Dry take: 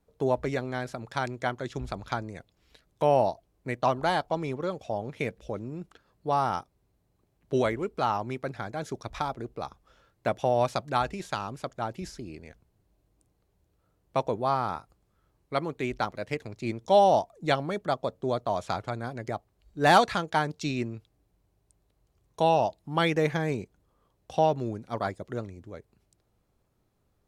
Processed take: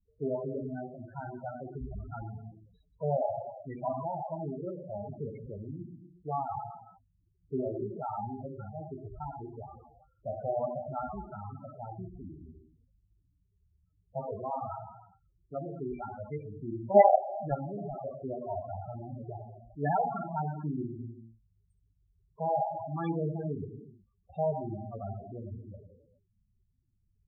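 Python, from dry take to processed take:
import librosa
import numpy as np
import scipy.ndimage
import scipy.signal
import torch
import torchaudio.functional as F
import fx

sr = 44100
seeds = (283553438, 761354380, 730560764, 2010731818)

y = fx.low_shelf(x, sr, hz=130.0, db=9.0)
y = fx.rev_gated(y, sr, seeds[0], gate_ms=430, shape='falling', drr_db=0.5)
y = fx.quant_companded(y, sr, bits=2, at=(16.92, 17.97))
y = fx.spec_topn(y, sr, count=8)
y = y * 10.0 ** (-8.5 / 20.0)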